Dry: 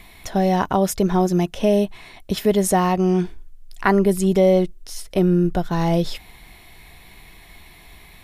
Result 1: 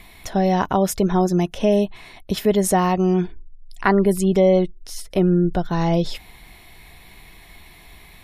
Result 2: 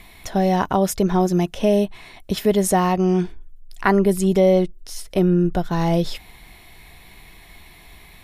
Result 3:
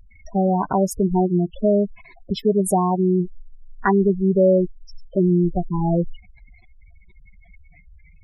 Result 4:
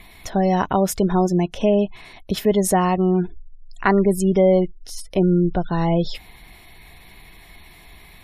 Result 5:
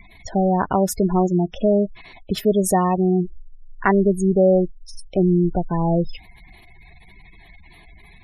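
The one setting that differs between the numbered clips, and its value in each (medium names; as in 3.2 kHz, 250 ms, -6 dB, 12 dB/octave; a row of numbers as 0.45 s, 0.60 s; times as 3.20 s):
spectral gate, under each frame's peak: -45 dB, -60 dB, -10 dB, -35 dB, -20 dB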